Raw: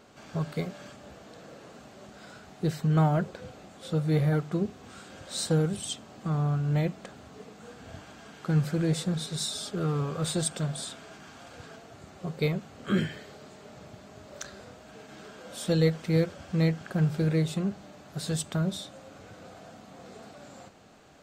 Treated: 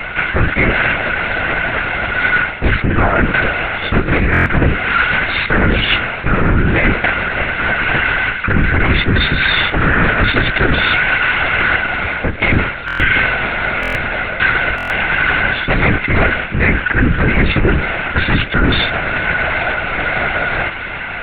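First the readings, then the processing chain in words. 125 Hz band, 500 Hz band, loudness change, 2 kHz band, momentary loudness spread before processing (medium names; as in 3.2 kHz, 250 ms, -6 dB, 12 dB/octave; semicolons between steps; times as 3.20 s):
+10.5 dB, +13.0 dB, +15.0 dB, +32.5 dB, 23 LU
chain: comb filter that takes the minimum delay 1.4 ms; high-order bell 1.9 kHz +15 dB 1.2 oct; hum notches 50/100/150/200 Hz; reverse; compression 16:1, threshold -35 dBFS, peak gain reduction 17.5 dB; reverse; feedback echo behind a high-pass 835 ms, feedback 81%, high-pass 1.6 kHz, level -23 dB; LPC vocoder at 8 kHz whisper; loudness maximiser +28 dB; buffer glitch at 4.32/12.86/13.81/14.76 s, samples 1024, times 5; trim -1 dB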